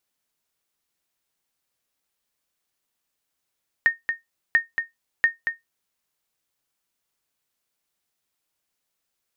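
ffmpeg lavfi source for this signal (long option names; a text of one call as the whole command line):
ffmpeg -f lavfi -i "aevalsrc='0.355*(sin(2*PI*1840*mod(t,0.69))*exp(-6.91*mod(t,0.69)/0.16)+0.447*sin(2*PI*1840*max(mod(t,0.69)-0.23,0))*exp(-6.91*max(mod(t,0.69)-0.23,0)/0.16))':duration=2.07:sample_rate=44100" out.wav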